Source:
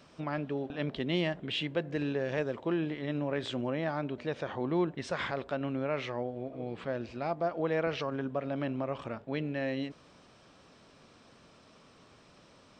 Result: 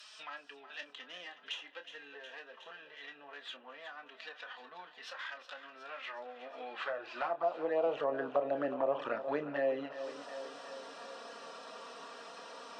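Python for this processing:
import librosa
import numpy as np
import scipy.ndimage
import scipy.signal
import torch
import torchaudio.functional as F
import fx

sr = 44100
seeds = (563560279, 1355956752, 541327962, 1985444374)

p1 = fx.tracing_dist(x, sr, depth_ms=0.099)
p2 = fx.notch(p1, sr, hz=2200.0, q=5.5)
p3 = fx.env_lowpass_down(p2, sr, base_hz=1200.0, full_db=-30.0)
p4 = fx.rider(p3, sr, range_db=10, speed_s=0.5)
p5 = p3 + F.gain(torch.from_numpy(p4), -0.5).numpy()
p6 = fx.filter_sweep_highpass(p5, sr, from_hz=3300.0, to_hz=580.0, start_s=5.7, end_s=8.0, q=0.9)
p7 = fx.env_flanger(p6, sr, rest_ms=5.1, full_db=-27.5)
p8 = fx.doubler(p7, sr, ms=28.0, db=-10)
p9 = fx.echo_thinned(p8, sr, ms=365, feedback_pct=61, hz=210.0, wet_db=-14)
p10 = fx.band_squash(p9, sr, depth_pct=40)
y = F.gain(torch.from_numpy(p10), 3.5).numpy()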